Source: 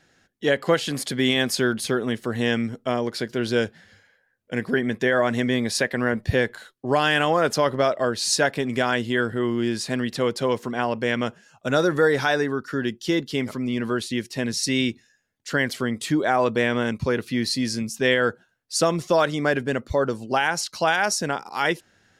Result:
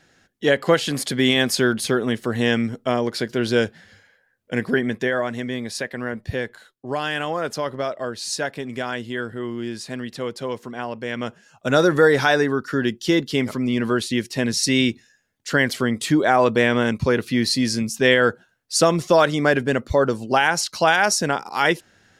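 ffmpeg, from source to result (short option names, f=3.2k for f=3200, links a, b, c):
-af "volume=12dB,afade=t=out:st=4.66:d=0.67:silence=0.398107,afade=t=in:st=11.09:d=0.72:silence=0.354813"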